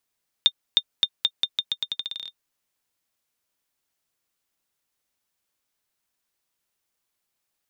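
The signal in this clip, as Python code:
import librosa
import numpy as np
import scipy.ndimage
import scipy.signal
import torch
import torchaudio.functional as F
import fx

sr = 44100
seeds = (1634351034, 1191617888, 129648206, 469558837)

y = fx.bouncing_ball(sr, first_gap_s=0.31, ratio=0.84, hz=3630.0, decay_ms=58.0, level_db=-4.5)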